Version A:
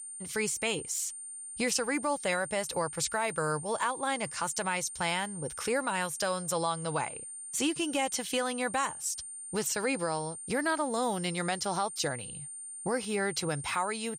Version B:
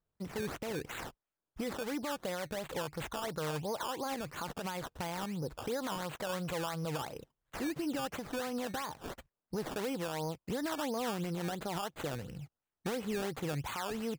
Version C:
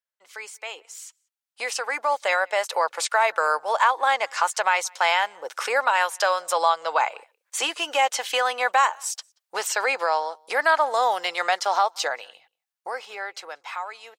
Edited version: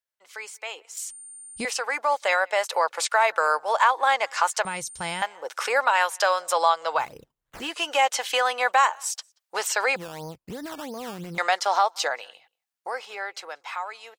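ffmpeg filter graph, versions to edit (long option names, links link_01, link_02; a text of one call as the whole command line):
ffmpeg -i take0.wav -i take1.wav -i take2.wav -filter_complex "[0:a]asplit=2[link_01][link_02];[1:a]asplit=2[link_03][link_04];[2:a]asplit=5[link_05][link_06][link_07][link_08][link_09];[link_05]atrim=end=0.972[link_10];[link_01]atrim=start=0.968:end=1.652[link_11];[link_06]atrim=start=1.648:end=4.652[link_12];[link_02]atrim=start=4.648:end=5.222[link_13];[link_07]atrim=start=5.218:end=7.1[link_14];[link_03]atrim=start=6.94:end=7.75[link_15];[link_08]atrim=start=7.59:end=9.962[link_16];[link_04]atrim=start=9.958:end=11.382[link_17];[link_09]atrim=start=11.378[link_18];[link_10][link_11]acrossfade=duration=0.004:curve1=hsin:curve2=hsin[link_19];[link_19][link_12]acrossfade=duration=0.004:curve1=hsin:curve2=hsin[link_20];[link_20][link_13]acrossfade=duration=0.004:curve1=hsin:curve2=hsin[link_21];[link_21][link_14]acrossfade=duration=0.004:curve1=hsin:curve2=hsin[link_22];[link_22][link_15]acrossfade=duration=0.16:curve1=tri:curve2=tri[link_23];[link_23][link_16]acrossfade=duration=0.16:curve1=tri:curve2=tri[link_24];[link_24][link_17]acrossfade=duration=0.004:curve1=hsin:curve2=hsin[link_25];[link_25][link_18]acrossfade=duration=0.004:curve1=hsin:curve2=hsin" out.wav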